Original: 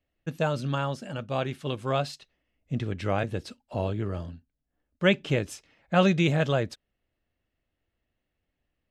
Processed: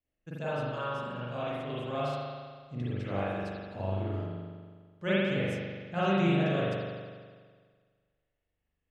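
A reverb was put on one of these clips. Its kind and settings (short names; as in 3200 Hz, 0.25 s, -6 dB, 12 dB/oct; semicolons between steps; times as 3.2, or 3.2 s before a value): spring tank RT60 1.7 s, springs 41 ms, chirp 45 ms, DRR -9.5 dB; gain -14 dB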